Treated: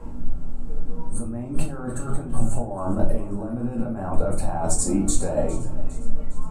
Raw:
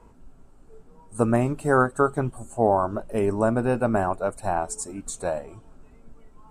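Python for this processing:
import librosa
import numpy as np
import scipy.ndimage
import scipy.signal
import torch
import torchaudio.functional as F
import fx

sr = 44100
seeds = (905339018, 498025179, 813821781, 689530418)

y = fx.low_shelf(x, sr, hz=440.0, db=9.5)
y = fx.over_compress(y, sr, threshold_db=-28.0, ratio=-1.0)
y = fx.echo_thinned(y, sr, ms=407, feedback_pct=53, hz=420.0, wet_db=-17.0)
y = fx.room_shoebox(y, sr, seeds[0], volume_m3=280.0, walls='furnished', distance_m=2.2)
y = F.gain(torch.from_numpy(y), -3.0).numpy()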